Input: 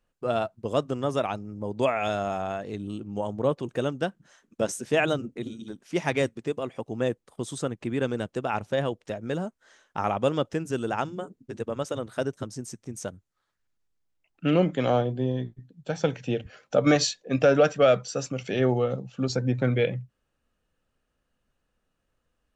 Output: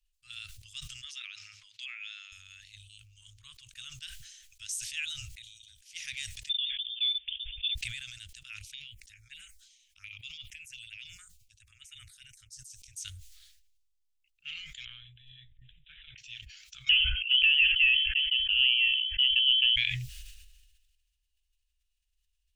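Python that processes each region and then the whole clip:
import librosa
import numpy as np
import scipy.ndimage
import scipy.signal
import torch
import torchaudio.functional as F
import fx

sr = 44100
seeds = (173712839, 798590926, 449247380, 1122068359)

y = fx.chain(x, sr, fx.bandpass_edges(low_hz=700.0, high_hz=3400.0),
    fx.band_squash(depth_pct=100), at=(1.04, 2.32))
y = fx.chain(y, sr, fx.band_shelf(hz=520.0, db=8.5, octaves=2.9),
    fx.notch(hz=680.0, q=9.3), at=(3.43, 3.98))
y = fx.chain(y, sr, fx.steep_highpass(hz=410.0, slope=96),
    fx.peak_eq(hz=2000.0, db=-5.0, octaves=0.45),
    fx.freq_invert(carrier_hz=4000), at=(6.49, 7.75))
y = fx.chain(y, sr, fx.peak_eq(hz=2300.0, db=10.0, octaves=0.49),
    fx.tremolo_shape(shape='triangle', hz=10.0, depth_pct=70),
    fx.env_phaser(low_hz=220.0, high_hz=1700.0, full_db=-25.0), at=(8.61, 12.88))
y = fx.chain(y, sr, fx.resample_bad(factor=6, down='none', up='filtered'),
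    fx.high_shelf(hz=2500.0, db=-5.0),
    fx.over_compress(threshold_db=-26.0, ratio=-0.5), at=(14.85, 16.18))
y = fx.chain(y, sr, fx.freq_invert(carrier_hz=3200),
    fx.band_squash(depth_pct=70), at=(16.89, 19.76))
y = scipy.signal.sosfilt(scipy.signal.cheby2(4, 70, [200.0, 790.0], 'bandstop', fs=sr, output='sos'), y)
y = fx.sustainer(y, sr, db_per_s=38.0)
y = F.gain(torch.from_numpy(y), -1.0).numpy()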